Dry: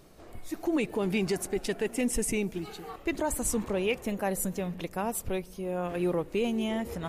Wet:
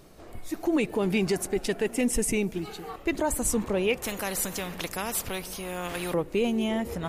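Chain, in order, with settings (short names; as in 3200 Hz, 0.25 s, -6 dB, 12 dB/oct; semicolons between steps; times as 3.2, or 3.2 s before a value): 4.02–6.14 spectral compressor 2:1; gain +3 dB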